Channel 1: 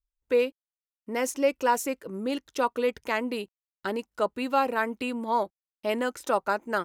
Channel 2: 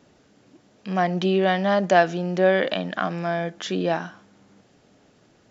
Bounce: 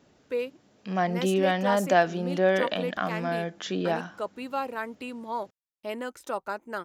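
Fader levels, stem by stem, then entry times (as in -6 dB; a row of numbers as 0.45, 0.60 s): -6.5, -4.0 dB; 0.00, 0.00 s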